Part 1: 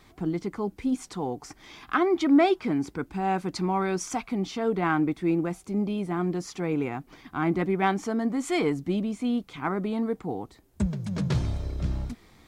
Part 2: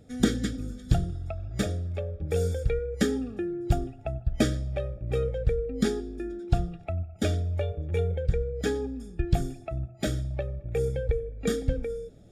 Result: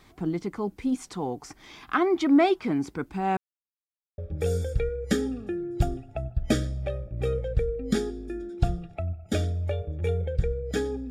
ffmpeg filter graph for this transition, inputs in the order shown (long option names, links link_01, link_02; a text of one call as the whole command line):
ffmpeg -i cue0.wav -i cue1.wav -filter_complex "[0:a]apad=whole_dur=11.1,atrim=end=11.1,asplit=2[link_01][link_02];[link_01]atrim=end=3.37,asetpts=PTS-STARTPTS,afade=type=out:start_time=3.366:duration=0.004:curve=hsin[link_03];[link_02]atrim=start=3.37:end=4.18,asetpts=PTS-STARTPTS,volume=0[link_04];[1:a]atrim=start=2.08:end=9,asetpts=PTS-STARTPTS,afade=type=in:duration=0.004:curve=hsin[link_05];[link_03][link_04][link_05]concat=n=3:v=0:a=1" out.wav